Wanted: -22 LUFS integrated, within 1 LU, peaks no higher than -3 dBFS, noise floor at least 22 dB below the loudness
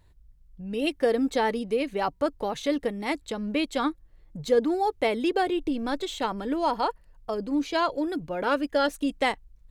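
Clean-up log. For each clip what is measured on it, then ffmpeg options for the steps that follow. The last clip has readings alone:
loudness -27.5 LUFS; peak level -11.5 dBFS; loudness target -22.0 LUFS
-> -af "volume=1.88"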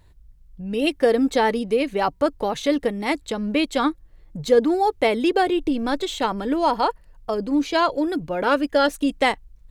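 loudness -22.0 LUFS; peak level -6.0 dBFS; noise floor -52 dBFS

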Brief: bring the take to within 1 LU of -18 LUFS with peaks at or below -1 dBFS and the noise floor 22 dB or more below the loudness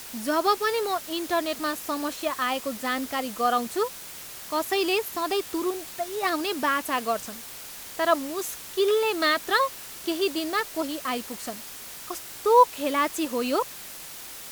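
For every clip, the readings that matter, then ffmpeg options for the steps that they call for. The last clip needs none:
noise floor -41 dBFS; noise floor target -49 dBFS; loudness -26.5 LUFS; peak level -6.0 dBFS; loudness target -18.0 LUFS
-> -af "afftdn=nr=8:nf=-41"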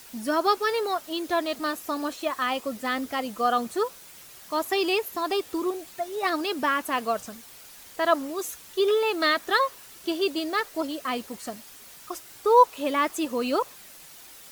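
noise floor -48 dBFS; noise floor target -49 dBFS
-> -af "afftdn=nr=6:nf=-48"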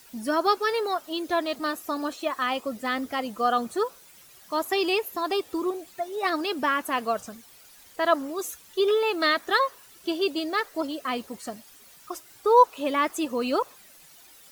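noise floor -52 dBFS; loudness -26.5 LUFS; peak level -6.0 dBFS; loudness target -18.0 LUFS
-> -af "volume=2.66,alimiter=limit=0.891:level=0:latency=1"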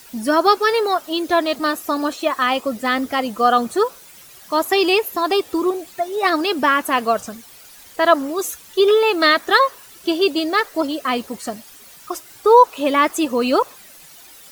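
loudness -18.0 LUFS; peak level -1.0 dBFS; noise floor -44 dBFS

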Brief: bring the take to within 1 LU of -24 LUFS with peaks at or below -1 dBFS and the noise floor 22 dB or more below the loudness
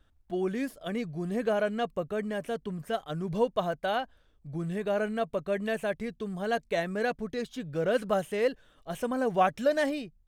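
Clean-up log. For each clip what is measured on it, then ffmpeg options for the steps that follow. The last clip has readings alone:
loudness -31.0 LUFS; peak level -12.0 dBFS; loudness target -24.0 LUFS
-> -af "volume=2.24"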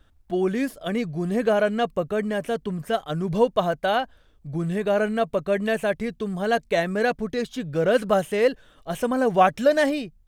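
loudness -24.0 LUFS; peak level -5.0 dBFS; noise floor -58 dBFS

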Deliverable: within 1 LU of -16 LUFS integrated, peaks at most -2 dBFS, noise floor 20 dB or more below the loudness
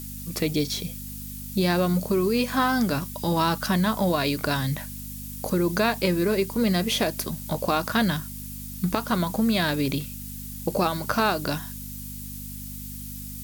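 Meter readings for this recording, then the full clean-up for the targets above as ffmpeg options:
hum 50 Hz; highest harmonic 250 Hz; hum level -36 dBFS; noise floor -37 dBFS; noise floor target -46 dBFS; loudness -26.0 LUFS; peak level -9.0 dBFS; loudness target -16.0 LUFS
-> -af "bandreject=f=50:t=h:w=4,bandreject=f=100:t=h:w=4,bandreject=f=150:t=h:w=4,bandreject=f=200:t=h:w=4,bandreject=f=250:t=h:w=4"
-af "afftdn=nr=9:nf=-37"
-af "volume=3.16,alimiter=limit=0.794:level=0:latency=1"

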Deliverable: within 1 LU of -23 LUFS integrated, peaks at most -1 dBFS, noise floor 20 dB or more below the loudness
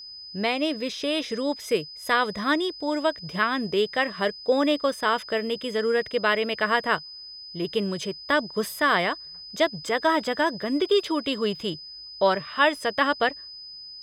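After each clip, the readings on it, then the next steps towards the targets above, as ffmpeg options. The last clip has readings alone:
steady tone 5 kHz; tone level -39 dBFS; loudness -25.0 LUFS; peak level -7.0 dBFS; loudness target -23.0 LUFS
-> -af "bandreject=f=5000:w=30"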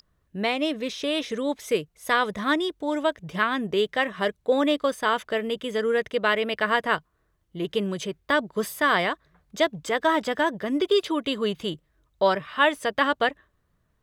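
steady tone not found; loudness -25.0 LUFS; peak level -7.0 dBFS; loudness target -23.0 LUFS
-> -af "volume=1.26"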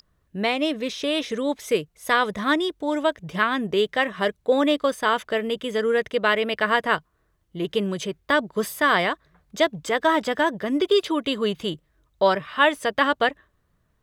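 loudness -23.0 LUFS; peak level -5.0 dBFS; noise floor -68 dBFS

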